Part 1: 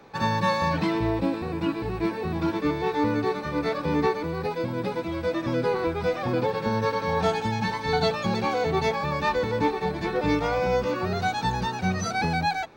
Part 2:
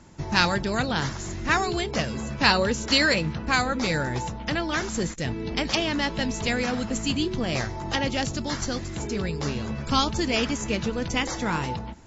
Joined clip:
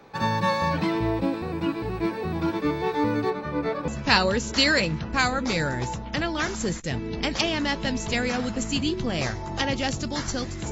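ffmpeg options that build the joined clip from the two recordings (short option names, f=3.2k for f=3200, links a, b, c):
-filter_complex "[0:a]asettb=1/sr,asplit=3[a][b][c];[a]atrim=end=3.304[d];[b]atrim=start=3.3:end=3.88,asetpts=PTS-STARTPTS,afade=t=in:d=0.004:c=qsin,afade=t=out:st=0.576:d=0.004:c=qsin,lowpass=f=2.2k:p=1[e];[c]atrim=start=3.876[f];[d][e]acrossfade=d=0.004:c1=hsin:c2=qsin[g];[g][f]acrossfade=d=0.004:c1=qsin:c2=hsin,apad=whole_dur=10.71,atrim=end=10.71,atrim=end=3.882[h];[1:a]atrim=start=2.218:end=9.05[i];[h][i]acrossfade=d=0.004:c1=hsin:c2=hsin"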